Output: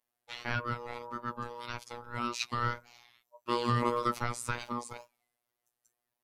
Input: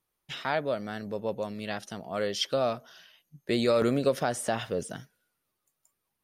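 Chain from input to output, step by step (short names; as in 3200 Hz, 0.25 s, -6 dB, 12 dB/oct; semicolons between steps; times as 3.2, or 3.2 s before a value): ring modulator 720 Hz; wow and flutter 120 cents; robotiser 120 Hz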